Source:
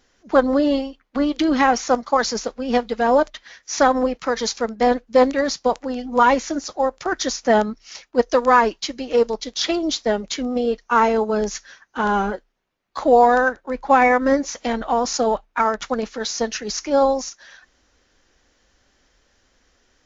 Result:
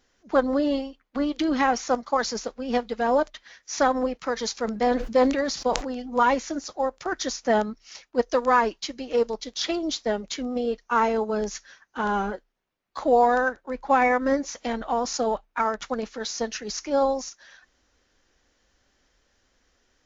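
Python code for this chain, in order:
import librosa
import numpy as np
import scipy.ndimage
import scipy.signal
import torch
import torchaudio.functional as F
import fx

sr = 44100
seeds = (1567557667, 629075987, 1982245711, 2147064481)

y = fx.sustainer(x, sr, db_per_s=70.0, at=(4.58, 6.01), fade=0.02)
y = F.gain(torch.from_numpy(y), -5.5).numpy()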